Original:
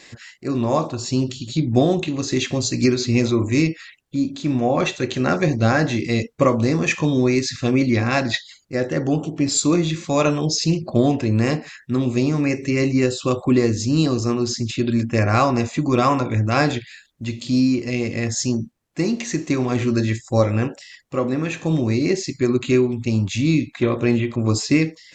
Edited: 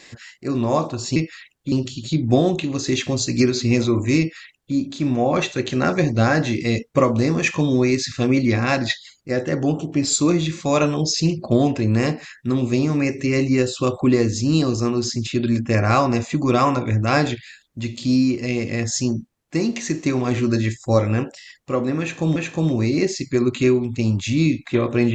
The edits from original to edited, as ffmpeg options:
-filter_complex "[0:a]asplit=4[a][b][c][d];[a]atrim=end=1.162[e];[b]atrim=start=3.628:end=4.192[f];[c]atrim=start=1.158:end=21.802[g];[d]atrim=start=21.438[h];[e][f]acrossfade=d=0.004:c1=hsin:c2=hsin[i];[i][g]acrossfade=d=0.004:c1=hsin:c2=hsin[j];[j][h]acrossfade=d=0.004:c1=hsin:c2=hsin"

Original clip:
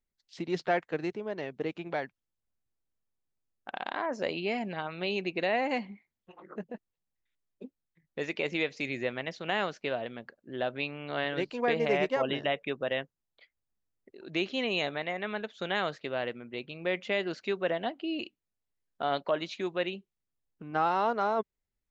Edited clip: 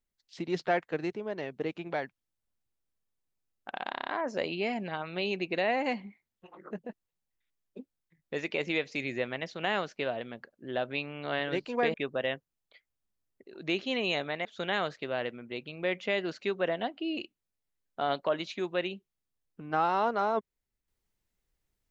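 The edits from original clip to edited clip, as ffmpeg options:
-filter_complex "[0:a]asplit=8[a][b][c][d][e][f][g][h];[a]atrim=end=3.942[i];[b]atrim=start=3.908:end=3.942[j];[c]atrim=start=3.908:end=3.942[k];[d]atrim=start=3.908:end=3.942[l];[e]atrim=start=3.908:end=3.942[m];[f]atrim=start=3.908:end=11.792[n];[g]atrim=start=12.608:end=15.122[o];[h]atrim=start=15.468[p];[i][j]acrossfade=d=0.004:c1=hsin:c2=hsin[q];[q][k]acrossfade=d=0.004:c1=hsin:c2=hsin[r];[r][l]acrossfade=d=0.004:c1=hsin:c2=hsin[s];[s][m]acrossfade=d=0.004:c1=hsin:c2=hsin[t];[t][n]acrossfade=d=0.004:c1=hsin:c2=hsin[u];[u][o]acrossfade=d=0.004:c1=hsin:c2=hsin[v];[v][p]acrossfade=d=0.004:c1=hsin:c2=hsin"

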